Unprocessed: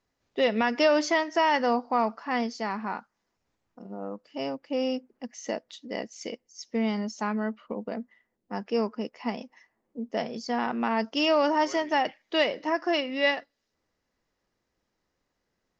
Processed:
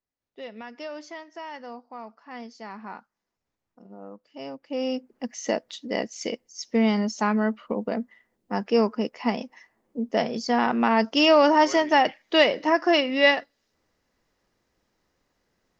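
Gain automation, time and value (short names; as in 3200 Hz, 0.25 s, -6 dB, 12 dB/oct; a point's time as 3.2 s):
2.02 s -15 dB
2.9 s -6 dB
4.39 s -6 dB
5.26 s +6 dB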